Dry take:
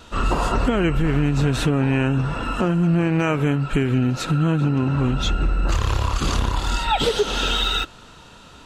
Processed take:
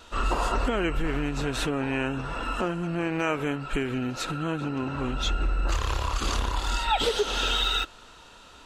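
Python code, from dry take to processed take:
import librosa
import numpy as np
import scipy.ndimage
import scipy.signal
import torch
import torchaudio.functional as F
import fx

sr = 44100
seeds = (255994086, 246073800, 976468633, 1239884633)

y = fx.peak_eq(x, sr, hz=140.0, db=-11.5, octaves=1.6)
y = y * librosa.db_to_amplitude(-3.5)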